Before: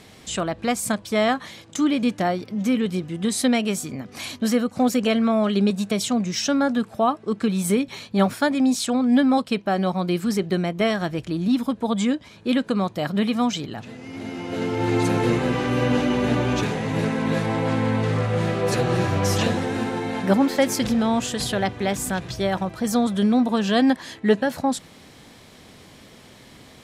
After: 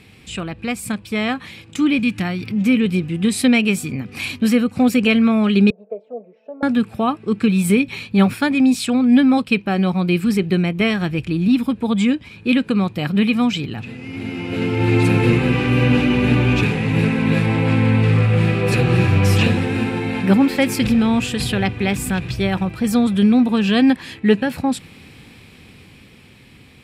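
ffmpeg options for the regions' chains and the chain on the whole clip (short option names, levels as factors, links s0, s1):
-filter_complex "[0:a]asettb=1/sr,asplit=3[s0][s1][s2];[s0]atrim=end=1.994[s3];[s1]atrim=start=1.99:end=2.52,asetpts=PTS-STARTPTS,afade=t=in:d=0.004:c=qsin,afade=t=out:st=0.526:d=0.004:c=qsin,equalizer=f=520:w=1:g=-10,acompressor=mode=upward:threshold=0.0501:ratio=2.5:attack=3.2:release=140:knee=2.83:detection=peak[s4];[s2]atrim=start=2.516[s5];[s3][s4]acrossfade=d=0.004:c1=hsin:c2=qsin[s6];[s6][s5]acrossfade=d=0.004:c1=qsin:c2=hsin,asettb=1/sr,asplit=3[s7][s8][s9];[s7]atrim=end=5.704[s10];[s8]atrim=start=5.7:end=6.63,asetpts=PTS-STARTPTS,afade=t=in:d=0.004:c=qsin,afade=t=out:st=0.926:d=0.004:c=qsin,asuperpass=centerf=560:order=4:qfactor=3,aecho=1:1:4.6:0.85,atrim=end_sample=41013[s11];[s9]atrim=start=6.626[s12];[s10][s11]acrossfade=d=0.004:c1=hsin:c2=qsin[s13];[s13][s12]acrossfade=d=0.004:c1=qsin:c2=hsin,equalizer=f=630:t=o:w=0.33:g=-9,equalizer=f=1000:t=o:w=0.33:g=-3,equalizer=f=2500:t=o:w=0.33:g=12,equalizer=f=6300:t=o:w=0.33:g=-8,dynaudnorm=f=180:g=17:m=2.11,equalizer=f=83:t=o:w=2.9:g=8,volume=0.708"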